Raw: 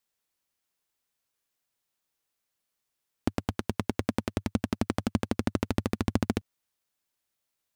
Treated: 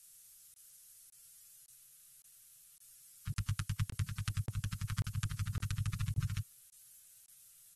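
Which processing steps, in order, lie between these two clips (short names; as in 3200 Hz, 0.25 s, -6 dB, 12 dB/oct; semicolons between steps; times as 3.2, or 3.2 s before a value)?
negative-ratio compressor -36 dBFS, ratio -1; inverse Chebyshev band-stop 240–760 Hz, stop band 40 dB; high shelf 4400 Hz -2.5 dB; comb 6.5 ms, depth 64%; added noise violet -60 dBFS; graphic EQ 250/500/1000/2000/4000 Hz -6/+4/-9/-8/-5 dB; crackling interface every 0.56 s, samples 1024, zero, from 0.54; gain +8 dB; AAC 32 kbps 44100 Hz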